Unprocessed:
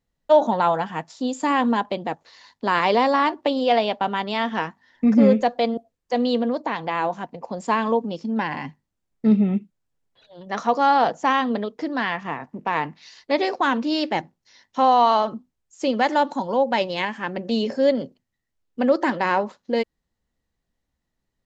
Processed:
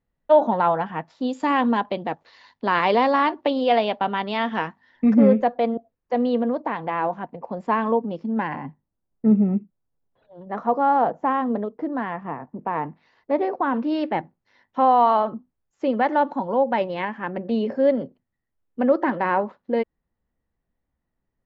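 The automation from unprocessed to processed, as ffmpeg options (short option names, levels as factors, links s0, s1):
-af "asetnsamples=n=441:p=0,asendcmd='1.22 lowpass f 3600;5.14 lowpass f 1900;8.56 lowpass f 1100;13.74 lowpass f 1800',lowpass=2300"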